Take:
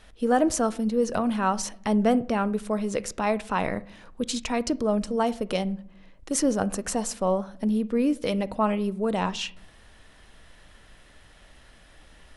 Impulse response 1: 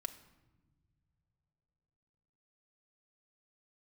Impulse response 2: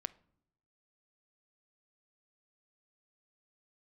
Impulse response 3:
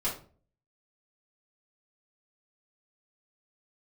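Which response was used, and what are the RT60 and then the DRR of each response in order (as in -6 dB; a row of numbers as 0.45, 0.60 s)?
2; not exponential, not exponential, 0.40 s; 5.0, 16.5, -9.0 dB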